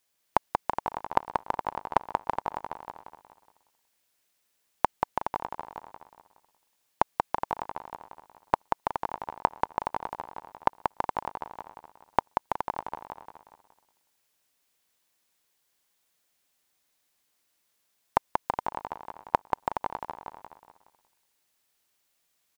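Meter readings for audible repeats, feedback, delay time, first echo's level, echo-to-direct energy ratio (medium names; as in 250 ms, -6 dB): 9, no regular repeats, 184 ms, -4.0 dB, -2.0 dB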